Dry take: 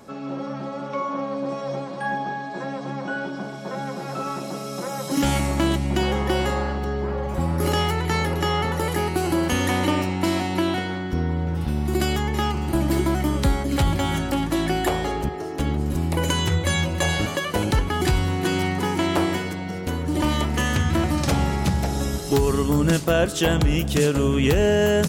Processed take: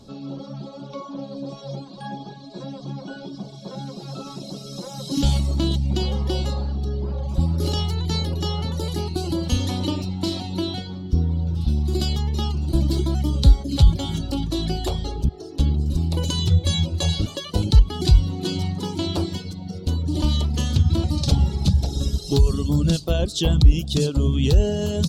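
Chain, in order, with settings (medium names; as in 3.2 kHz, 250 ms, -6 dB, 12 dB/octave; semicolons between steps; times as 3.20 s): RIAA curve playback; reverb removal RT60 1.1 s; resonant high shelf 2.8 kHz +13 dB, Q 3; trim -6.5 dB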